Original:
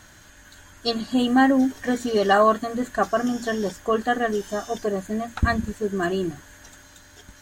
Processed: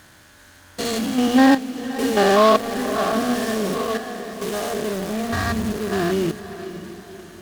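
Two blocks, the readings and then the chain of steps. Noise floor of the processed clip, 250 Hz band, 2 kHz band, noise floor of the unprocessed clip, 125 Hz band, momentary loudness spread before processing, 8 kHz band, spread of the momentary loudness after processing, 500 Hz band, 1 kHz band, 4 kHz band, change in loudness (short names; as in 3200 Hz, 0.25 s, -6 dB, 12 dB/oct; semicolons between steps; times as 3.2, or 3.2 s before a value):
-49 dBFS, +2.5 dB, +1.0 dB, -50 dBFS, +2.0 dB, 10 LU, +7.0 dB, 18 LU, +2.5 dB, +1.5 dB, +4.0 dB, +2.5 dB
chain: stepped spectrum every 0.2 s; HPF 60 Hz; notches 60/120/180/240 Hz; dynamic EQ 6800 Hz, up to +4 dB, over -52 dBFS, Q 0.91; in parallel at -7 dB: bit-crush 5-bit; on the sum: step gate "xxxxxxx..xx" 68 bpm -12 dB; on a send: diffused feedback echo 0.566 s, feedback 45%, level -12 dB; on the sum: noise-modulated delay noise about 2500 Hz, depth 0.037 ms; gain +2.5 dB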